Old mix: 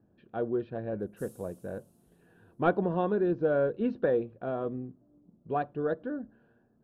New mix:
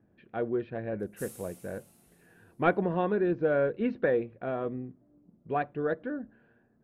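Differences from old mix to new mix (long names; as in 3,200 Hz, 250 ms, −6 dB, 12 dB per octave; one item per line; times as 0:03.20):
background +9.5 dB
master: add parametric band 2,100 Hz +14 dB 0.51 octaves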